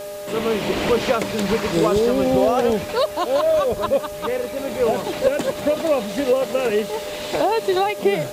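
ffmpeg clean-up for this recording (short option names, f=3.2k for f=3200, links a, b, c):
-af "adeclick=t=4,bandreject=f=410.2:t=h:w=4,bandreject=f=820.4:t=h:w=4,bandreject=f=1.2306k:t=h:w=4,bandreject=f=1.6408k:t=h:w=4,bandreject=f=600:w=30,afwtdn=0.0079"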